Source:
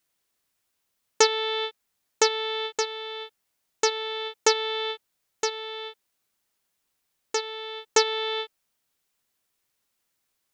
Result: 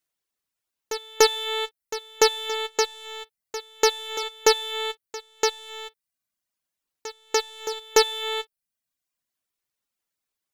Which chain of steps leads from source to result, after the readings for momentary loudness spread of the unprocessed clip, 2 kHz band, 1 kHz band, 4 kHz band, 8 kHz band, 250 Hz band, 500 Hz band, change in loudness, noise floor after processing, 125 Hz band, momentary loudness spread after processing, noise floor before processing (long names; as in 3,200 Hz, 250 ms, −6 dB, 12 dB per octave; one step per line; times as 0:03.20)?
14 LU, +1.5 dB, +2.0 dB, +1.5 dB, +2.0 dB, +4.0 dB, +3.0 dB, +2.0 dB, below −85 dBFS, can't be measured, 18 LU, −77 dBFS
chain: reverb reduction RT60 0.83 s
leveller curve on the samples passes 2
echo ahead of the sound 292 ms −14 dB
level −2.5 dB